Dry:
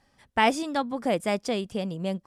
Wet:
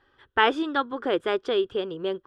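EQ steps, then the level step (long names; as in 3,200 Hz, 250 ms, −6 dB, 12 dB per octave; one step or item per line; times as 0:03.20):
drawn EQ curve 120 Hz 0 dB, 200 Hz −12 dB, 380 Hz +13 dB, 650 Hz −4 dB, 1,500 Hz +13 dB, 2,200 Hz −3 dB, 3,300 Hz +8 dB, 4,900 Hz −10 dB, 8,800 Hz −19 dB
−2.0 dB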